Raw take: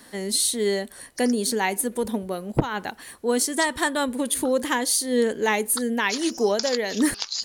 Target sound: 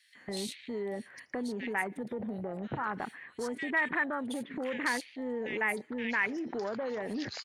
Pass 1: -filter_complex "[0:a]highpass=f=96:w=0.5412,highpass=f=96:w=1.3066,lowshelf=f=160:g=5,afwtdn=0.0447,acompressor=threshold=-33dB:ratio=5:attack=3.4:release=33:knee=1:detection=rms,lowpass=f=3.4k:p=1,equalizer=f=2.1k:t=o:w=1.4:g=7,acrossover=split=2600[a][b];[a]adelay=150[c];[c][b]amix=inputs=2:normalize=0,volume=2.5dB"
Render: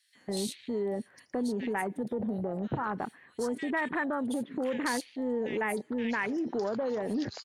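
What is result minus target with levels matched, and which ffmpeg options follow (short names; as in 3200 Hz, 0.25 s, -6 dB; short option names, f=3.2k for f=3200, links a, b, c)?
2000 Hz band -5.5 dB; compressor: peak gain reduction -5 dB
-filter_complex "[0:a]highpass=f=96:w=0.5412,highpass=f=96:w=1.3066,lowshelf=f=160:g=5,afwtdn=0.0447,acompressor=threshold=-39.5dB:ratio=5:attack=3.4:release=33:knee=1:detection=rms,lowpass=f=3.4k:p=1,equalizer=f=2.1k:t=o:w=1.4:g=17.5,acrossover=split=2600[a][b];[a]adelay=150[c];[c][b]amix=inputs=2:normalize=0,volume=2.5dB"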